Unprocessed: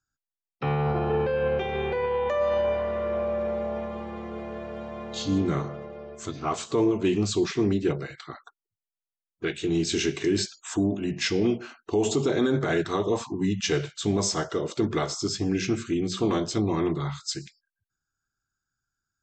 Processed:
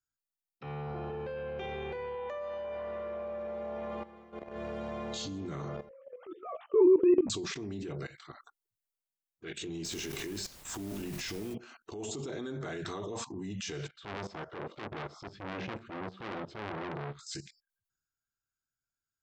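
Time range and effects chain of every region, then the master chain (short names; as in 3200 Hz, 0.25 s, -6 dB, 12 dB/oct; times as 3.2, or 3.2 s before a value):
2.15–4.56 LPF 3300 Hz 6 dB/oct + low shelf 240 Hz -8 dB
5.89–7.3 sine-wave speech + tilt shelf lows +8 dB, about 1100 Hz + doubler 16 ms -3.5 dB
9.84–11.53 HPF 48 Hz + compressor 4:1, threshold -28 dBFS + added noise pink -46 dBFS
13.88–17.19 air absorption 390 m + core saturation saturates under 1800 Hz
whole clip: high shelf 7500 Hz +7.5 dB; level quantiser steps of 19 dB; transient shaper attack -7 dB, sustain +4 dB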